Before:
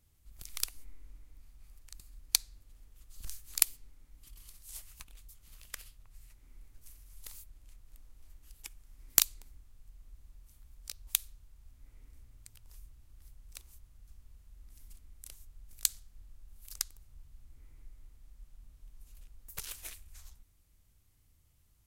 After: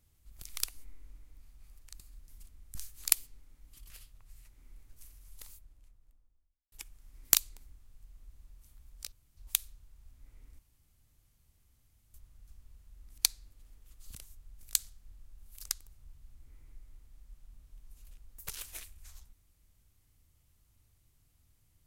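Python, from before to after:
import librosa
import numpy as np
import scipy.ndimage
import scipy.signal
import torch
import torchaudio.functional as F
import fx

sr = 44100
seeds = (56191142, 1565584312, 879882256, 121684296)

y = fx.studio_fade_out(x, sr, start_s=6.96, length_s=1.61)
y = fx.edit(y, sr, fx.swap(start_s=2.28, length_s=0.97, other_s=14.78, other_length_s=0.47),
    fx.cut(start_s=4.4, length_s=1.35),
    fx.insert_room_tone(at_s=10.97, length_s=0.25),
    fx.room_tone_fill(start_s=12.19, length_s=1.55), tone=tone)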